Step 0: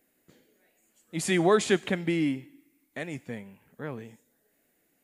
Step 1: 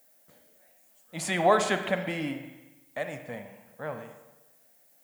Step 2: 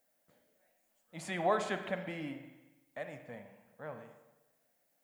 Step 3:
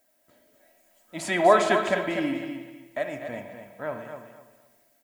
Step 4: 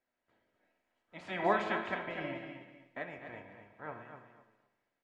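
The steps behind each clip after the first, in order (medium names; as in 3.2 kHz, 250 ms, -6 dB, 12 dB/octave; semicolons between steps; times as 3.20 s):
FFT filter 220 Hz 0 dB, 380 Hz -6 dB, 580 Hz +12 dB, 2.5 kHz +3 dB; added noise violet -58 dBFS; spring tank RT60 1.1 s, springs 39/57 ms, chirp 30 ms, DRR 7 dB; trim -4.5 dB
treble shelf 4.6 kHz -7.5 dB; trim -8.5 dB
comb 3.1 ms, depth 52%; level rider gain up to 4 dB; on a send: feedback delay 249 ms, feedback 25%, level -8 dB; on the sum: trim +7 dB
spectral peaks clipped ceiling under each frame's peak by 14 dB; low-pass 2.5 kHz 12 dB/octave; flange 0.48 Hz, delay 7.7 ms, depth 4.2 ms, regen +65%; trim -7 dB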